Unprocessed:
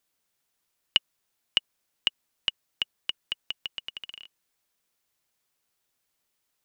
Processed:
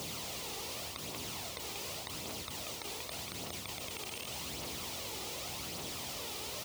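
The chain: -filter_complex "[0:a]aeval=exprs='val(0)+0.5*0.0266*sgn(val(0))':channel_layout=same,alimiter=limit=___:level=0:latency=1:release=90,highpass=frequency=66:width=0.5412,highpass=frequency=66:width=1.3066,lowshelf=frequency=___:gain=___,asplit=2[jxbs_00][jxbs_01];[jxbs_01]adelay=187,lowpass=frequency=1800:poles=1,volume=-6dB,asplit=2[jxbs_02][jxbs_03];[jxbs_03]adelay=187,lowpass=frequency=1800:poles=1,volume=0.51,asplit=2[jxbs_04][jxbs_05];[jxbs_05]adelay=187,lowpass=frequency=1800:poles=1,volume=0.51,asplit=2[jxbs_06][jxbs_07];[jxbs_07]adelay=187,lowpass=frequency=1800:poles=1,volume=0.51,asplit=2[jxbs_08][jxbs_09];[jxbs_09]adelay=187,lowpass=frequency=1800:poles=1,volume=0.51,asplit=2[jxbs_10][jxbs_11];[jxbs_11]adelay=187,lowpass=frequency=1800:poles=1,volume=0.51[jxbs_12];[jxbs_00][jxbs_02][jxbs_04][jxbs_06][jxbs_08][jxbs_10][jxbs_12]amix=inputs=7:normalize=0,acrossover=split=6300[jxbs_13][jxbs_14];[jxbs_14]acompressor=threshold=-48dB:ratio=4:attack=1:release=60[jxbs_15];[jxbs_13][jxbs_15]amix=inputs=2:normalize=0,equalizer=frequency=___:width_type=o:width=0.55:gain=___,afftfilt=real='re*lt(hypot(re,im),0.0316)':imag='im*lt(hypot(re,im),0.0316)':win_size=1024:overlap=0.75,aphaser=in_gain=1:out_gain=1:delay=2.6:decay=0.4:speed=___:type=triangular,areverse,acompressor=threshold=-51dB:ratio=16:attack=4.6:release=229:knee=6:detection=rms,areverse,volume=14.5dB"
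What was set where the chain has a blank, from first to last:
-12dB, 460, 7, 1600, -12, 0.86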